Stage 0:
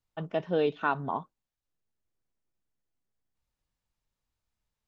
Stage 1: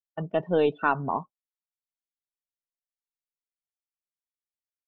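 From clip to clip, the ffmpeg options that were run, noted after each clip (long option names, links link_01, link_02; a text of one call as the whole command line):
ffmpeg -i in.wav -af "aeval=exprs='0.188*(cos(1*acos(clip(val(0)/0.188,-1,1)))-cos(1*PI/2))+0.00473*(cos(4*acos(clip(val(0)/0.188,-1,1)))-cos(4*PI/2))':channel_layout=same,afftdn=noise_reduction=26:noise_floor=-42,agate=range=-13dB:threshold=-45dB:ratio=16:detection=peak,volume=4dB" out.wav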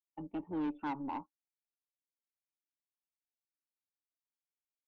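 ffmpeg -i in.wav -filter_complex "[0:a]asplit=3[link_01][link_02][link_03];[link_01]bandpass=frequency=300:width_type=q:width=8,volume=0dB[link_04];[link_02]bandpass=frequency=870:width_type=q:width=8,volume=-6dB[link_05];[link_03]bandpass=frequency=2240:width_type=q:width=8,volume=-9dB[link_06];[link_04][link_05][link_06]amix=inputs=3:normalize=0,tremolo=f=280:d=0.4,asoftclip=type=tanh:threshold=-35.5dB,volume=4dB" out.wav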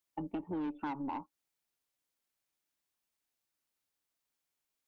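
ffmpeg -i in.wav -af "acompressor=threshold=-45dB:ratio=6,volume=9dB" out.wav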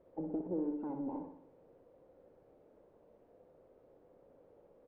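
ffmpeg -i in.wav -af "aeval=exprs='val(0)+0.5*0.00794*sgn(val(0))':channel_layout=same,lowpass=frequency=510:width_type=q:width=4.9,aecho=1:1:61|122|183|244|305|366|427:0.447|0.246|0.135|0.0743|0.0409|0.0225|0.0124,volume=-6dB" out.wav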